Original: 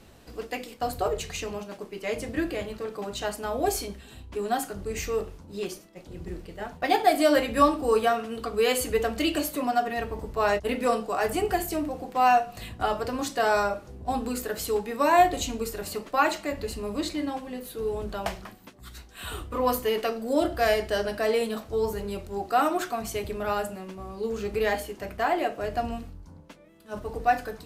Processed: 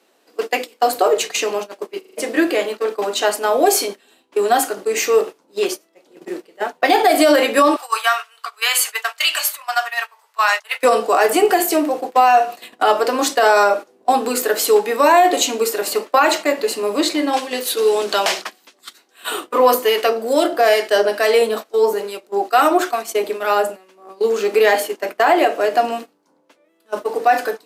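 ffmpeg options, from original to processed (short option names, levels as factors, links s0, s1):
-filter_complex "[0:a]asettb=1/sr,asplit=3[s0][s1][s2];[s0]atrim=end=7.764[s3];[s1]atrim=start=7.76:end=10.83,asetpts=PTS-STARTPTS,afade=t=in:d=0.004:c=qsin,afade=t=out:st=3.066:d=0.004:c=qsin,highpass=f=1000:w=0.5412,highpass=f=1000:w=1.3066[s4];[s2]atrim=start=10.826[s5];[s3][s4]acrossfade=d=0.004:c1=hsin:c2=qsin[s6];[s6][s5]acrossfade=d=0.004:c1=qsin:c2=hsin,asettb=1/sr,asplit=3[s7][s8][s9];[s7]atrim=end=17.334[s10];[s8]atrim=start=17.33:end=18.93,asetpts=PTS-STARTPTS,afade=t=in:d=0.004:c=qsin,afade=t=out:st=1.596:d=0.004:c=qsin,equalizer=f=5000:w=0.4:g=11.5[s11];[s9]atrim=start=18.926[s12];[s10][s11]acrossfade=d=0.004:c1=hsin:c2=qsin[s13];[s13][s12]acrossfade=d=0.004:c1=qsin:c2=hsin,asettb=1/sr,asplit=3[s14][s15][s16];[s14]atrim=end=19.744[s17];[s15]atrim=start=19.74:end=24.09,asetpts=PTS-STARTPTS,afade=t=in:d=0.004:c=qsin,afade=t=out:st=4.346:d=0.004:c=qsin,acrossover=split=1200[s18][s19];[s18]aeval=exprs='val(0)*(1-0.5/2+0.5/2*cos(2*PI*2.3*n/s))':c=same[s20];[s19]aeval=exprs='val(0)*(1-0.5/2-0.5/2*cos(2*PI*2.3*n/s))':c=same[s21];[s20][s21]amix=inputs=2:normalize=0[s22];[s16]atrim=start=24.086[s23];[s17][s22]acrossfade=d=0.004:c1=hsin:c2=qsin[s24];[s24][s23]acrossfade=d=0.004:c1=qsin:c2=hsin,asplit=6[s25][s26][s27][s28][s29][s30];[s25]atrim=end=2.012[s31];[s26]atrim=start=1.968:end=2.012[s32];[s27]atrim=start=1.968:end=2.012[s33];[s28]atrim=start=1.968:end=2.012[s34];[s29]atrim=start=1.968:end=2.012[s35];[s30]atrim=start=2.168[s36];[s31][s32]acrossfade=d=0.004:c1=hsin:c2=hsin[s37];[s37][s33]acrossfade=d=0.004:c1=hsin:c2=hsin[s38];[s38][s34]acrossfade=d=0.004:c1=hsin:c2=hsin[s39];[s39][s35]acrossfade=d=0.004:c1=hsin:c2=hsin[s40];[s40][s36]acrossfade=d=0.004:c1=hsin:c2=hsin,agate=range=0.141:threshold=0.0158:ratio=16:detection=peak,highpass=f=310:w=0.5412,highpass=f=310:w=1.3066,alimiter=level_in=7.08:limit=0.891:release=50:level=0:latency=1,volume=0.708"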